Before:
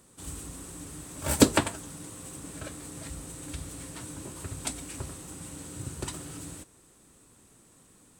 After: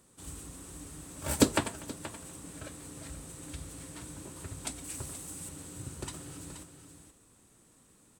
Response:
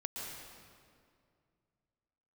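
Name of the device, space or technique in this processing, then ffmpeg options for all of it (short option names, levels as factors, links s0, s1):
ducked delay: -filter_complex "[0:a]asettb=1/sr,asplit=3[s0][s1][s2];[s0]atrim=end=4.844[s3];[s1]atrim=start=4.84:end=5.49,asetpts=PTS-STARTPTS,afade=t=in:d=0.004:c=qsin,afade=t=out:st=0.646:d=0.004:c=qsin,highshelf=f=6000:g=9.5[s4];[s2]atrim=start=5.486[s5];[s3][s4]acrossfade=d=0.004:c1=hsin:c2=qsin[s6];[s6][s5]acrossfade=d=0.004:c1=qsin:c2=hsin,aecho=1:1:244:0.075,asplit=3[s7][s8][s9];[s8]adelay=477,volume=0.376[s10];[s9]apad=whole_len=393318[s11];[s10][s11]sidechaincompress=threshold=0.0141:ratio=8:attack=12:release=423[s12];[s7][s12]amix=inputs=2:normalize=0,volume=0.596"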